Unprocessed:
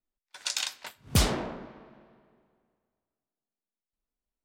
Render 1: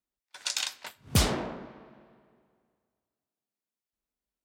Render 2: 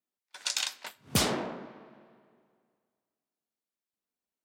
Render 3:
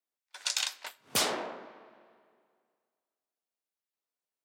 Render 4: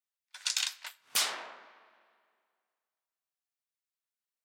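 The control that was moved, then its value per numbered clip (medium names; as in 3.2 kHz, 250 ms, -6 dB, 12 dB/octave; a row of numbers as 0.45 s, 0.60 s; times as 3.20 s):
high-pass, cutoff frequency: 48 Hz, 160 Hz, 430 Hz, 1.2 kHz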